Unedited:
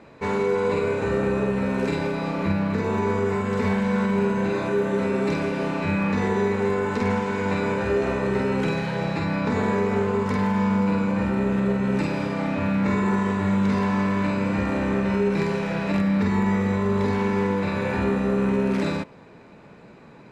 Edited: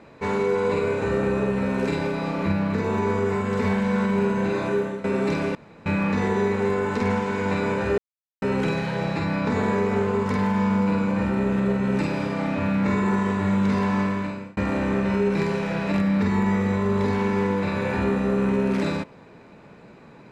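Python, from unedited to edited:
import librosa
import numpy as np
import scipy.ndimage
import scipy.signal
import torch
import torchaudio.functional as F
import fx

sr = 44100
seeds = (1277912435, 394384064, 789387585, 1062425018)

y = fx.edit(x, sr, fx.fade_out_to(start_s=4.75, length_s=0.29, floor_db=-16.0),
    fx.room_tone_fill(start_s=5.55, length_s=0.31),
    fx.silence(start_s=7.98, length_s=0.44),
    fx.fade_out_span(start_s=14.01, length_s=0.56), tone=tone)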